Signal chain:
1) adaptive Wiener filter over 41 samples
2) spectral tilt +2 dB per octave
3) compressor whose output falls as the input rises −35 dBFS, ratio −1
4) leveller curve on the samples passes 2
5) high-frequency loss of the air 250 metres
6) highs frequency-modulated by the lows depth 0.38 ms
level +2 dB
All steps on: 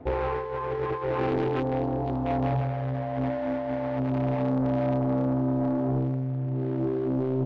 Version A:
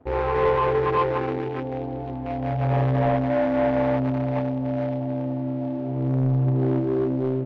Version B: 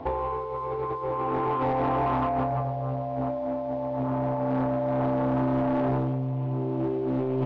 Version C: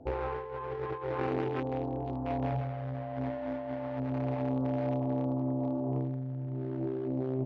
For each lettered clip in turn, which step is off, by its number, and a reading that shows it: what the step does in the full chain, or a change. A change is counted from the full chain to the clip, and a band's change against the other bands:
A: 3, change in momentary loudness spread +4 LU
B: 1, 1 kHz band +6.0 dB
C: 4, change in crest factor +6.0 dB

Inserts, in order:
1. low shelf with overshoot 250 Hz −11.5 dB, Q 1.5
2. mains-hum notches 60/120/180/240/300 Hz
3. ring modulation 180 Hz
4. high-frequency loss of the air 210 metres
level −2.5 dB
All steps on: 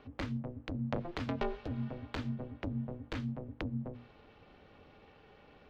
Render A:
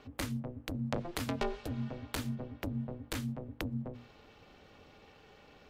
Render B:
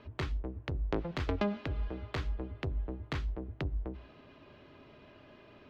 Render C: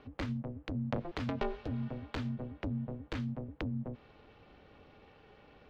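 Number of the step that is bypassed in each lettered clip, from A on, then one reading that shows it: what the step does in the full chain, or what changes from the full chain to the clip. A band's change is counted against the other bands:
4, 4 kHz band +5.0 dB
3, change in momentary loudness spread +3 LU
2, change in momentary loudness spread −15 LU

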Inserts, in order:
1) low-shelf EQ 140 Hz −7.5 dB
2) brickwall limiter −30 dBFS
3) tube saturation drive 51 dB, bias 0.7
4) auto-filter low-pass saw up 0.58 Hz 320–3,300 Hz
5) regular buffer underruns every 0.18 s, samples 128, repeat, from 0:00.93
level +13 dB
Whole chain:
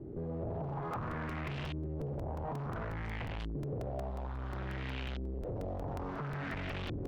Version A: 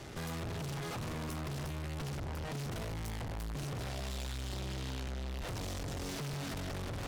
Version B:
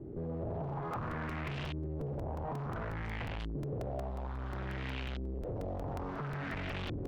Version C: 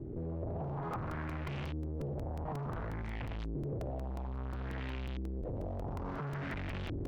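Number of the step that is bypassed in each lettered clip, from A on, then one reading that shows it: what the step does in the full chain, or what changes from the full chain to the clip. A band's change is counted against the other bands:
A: 4, 4 kHz band +7.5 dB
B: 2, average gain reduction 3.5 dB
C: 1, 4 kHz band −2.5 dB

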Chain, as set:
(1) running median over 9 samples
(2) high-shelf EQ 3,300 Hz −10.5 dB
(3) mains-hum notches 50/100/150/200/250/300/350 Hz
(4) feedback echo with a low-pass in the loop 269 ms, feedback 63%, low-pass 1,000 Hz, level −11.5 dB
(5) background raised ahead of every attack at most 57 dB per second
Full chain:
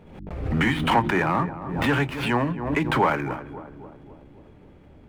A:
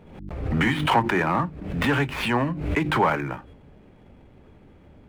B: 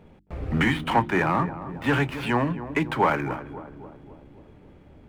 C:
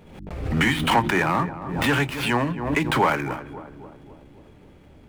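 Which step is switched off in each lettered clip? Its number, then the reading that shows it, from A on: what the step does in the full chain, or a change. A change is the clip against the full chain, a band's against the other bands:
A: 4, change in momentary loudness spread −4 LU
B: 5, 4 kHz band −2.0 dB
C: 2, 8 kHz band +8.0 dB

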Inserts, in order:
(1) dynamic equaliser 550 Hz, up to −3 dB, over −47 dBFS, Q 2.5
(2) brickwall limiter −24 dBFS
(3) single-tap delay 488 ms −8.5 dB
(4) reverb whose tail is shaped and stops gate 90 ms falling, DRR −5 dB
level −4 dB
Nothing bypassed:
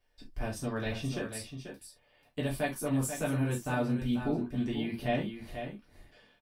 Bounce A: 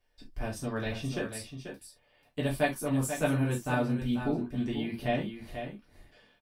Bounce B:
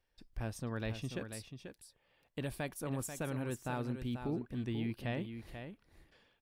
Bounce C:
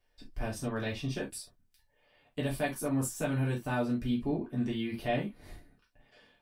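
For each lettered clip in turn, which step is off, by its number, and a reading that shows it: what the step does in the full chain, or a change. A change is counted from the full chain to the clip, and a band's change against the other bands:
2, change in crest factor +2.5 dB
4, 125 Hz band +2.0 dB
3, change in momentary loudness spread −3 LU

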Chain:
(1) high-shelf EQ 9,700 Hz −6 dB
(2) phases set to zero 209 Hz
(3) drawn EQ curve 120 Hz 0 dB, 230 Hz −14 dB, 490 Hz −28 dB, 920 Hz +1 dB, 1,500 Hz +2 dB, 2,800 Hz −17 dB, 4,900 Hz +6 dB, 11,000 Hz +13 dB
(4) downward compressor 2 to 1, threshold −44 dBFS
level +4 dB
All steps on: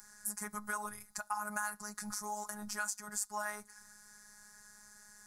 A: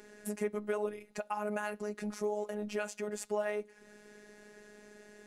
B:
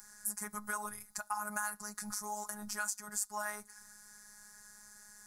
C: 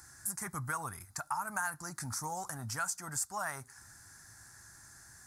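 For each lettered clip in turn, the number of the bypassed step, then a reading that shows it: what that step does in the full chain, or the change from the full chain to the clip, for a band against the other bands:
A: 3, 500 Hz band +19.0 dB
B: 1, 8 kHz band +2.0 dB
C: 2, 125 Hz band +13.0 dB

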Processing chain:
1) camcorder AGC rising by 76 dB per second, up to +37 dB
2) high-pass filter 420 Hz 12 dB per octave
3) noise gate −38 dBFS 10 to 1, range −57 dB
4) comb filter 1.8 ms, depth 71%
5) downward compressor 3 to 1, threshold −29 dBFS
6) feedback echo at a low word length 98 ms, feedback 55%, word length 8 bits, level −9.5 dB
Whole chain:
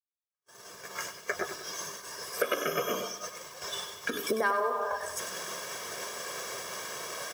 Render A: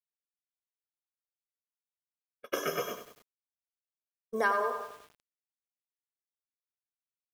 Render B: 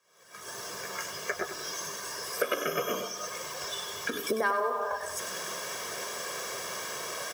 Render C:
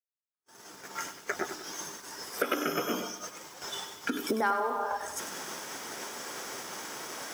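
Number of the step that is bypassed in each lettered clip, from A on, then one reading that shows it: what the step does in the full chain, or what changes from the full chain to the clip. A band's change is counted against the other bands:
1, change in crest factor +2.0 dB
3, change in momentary loudness spread −3 LU
4, 250 Hz band +7.0 dB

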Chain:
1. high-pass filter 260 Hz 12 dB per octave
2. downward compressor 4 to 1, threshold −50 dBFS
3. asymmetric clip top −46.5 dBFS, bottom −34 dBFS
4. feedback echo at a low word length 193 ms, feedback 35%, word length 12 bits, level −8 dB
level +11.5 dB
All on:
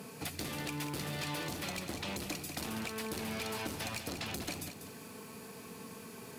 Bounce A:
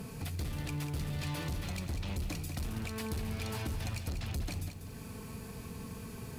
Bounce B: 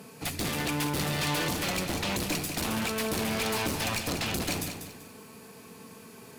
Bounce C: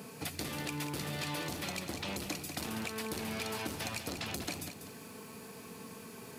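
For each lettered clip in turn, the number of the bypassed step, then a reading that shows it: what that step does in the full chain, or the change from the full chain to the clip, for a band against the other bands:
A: 1, change in crest factor −7.0 dB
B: 2, average gain reduction 8.5 dB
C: 3, distortion level −16 dB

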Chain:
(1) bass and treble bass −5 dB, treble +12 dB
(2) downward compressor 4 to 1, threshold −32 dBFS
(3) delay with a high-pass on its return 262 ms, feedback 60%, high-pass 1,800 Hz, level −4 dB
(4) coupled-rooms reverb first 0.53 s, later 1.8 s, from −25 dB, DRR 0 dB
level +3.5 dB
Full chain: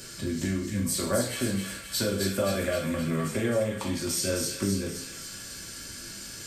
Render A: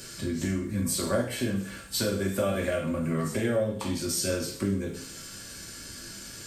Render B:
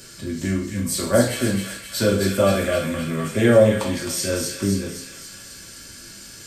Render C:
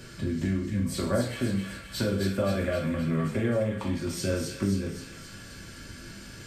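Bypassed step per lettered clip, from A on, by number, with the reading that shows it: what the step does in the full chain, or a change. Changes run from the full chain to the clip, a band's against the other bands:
3, echo-to-direct ratio 1.5 dB to 0.0 dB
2, change in crest factor +3.0 dB
1, 8 kHz band −9.0 dB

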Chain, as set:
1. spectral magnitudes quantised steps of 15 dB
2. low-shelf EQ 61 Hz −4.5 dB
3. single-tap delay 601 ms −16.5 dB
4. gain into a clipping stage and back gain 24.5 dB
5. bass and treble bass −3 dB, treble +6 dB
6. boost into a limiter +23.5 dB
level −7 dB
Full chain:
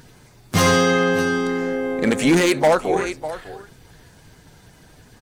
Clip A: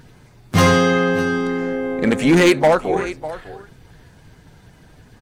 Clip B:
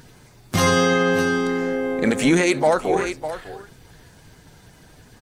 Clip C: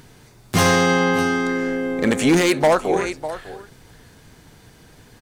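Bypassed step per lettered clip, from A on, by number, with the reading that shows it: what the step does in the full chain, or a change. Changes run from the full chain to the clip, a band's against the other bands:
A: 5, 8 kHz band −4.5 dB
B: 4, distortion level −14 dB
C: 1, change in momentary loudness spread +3 LU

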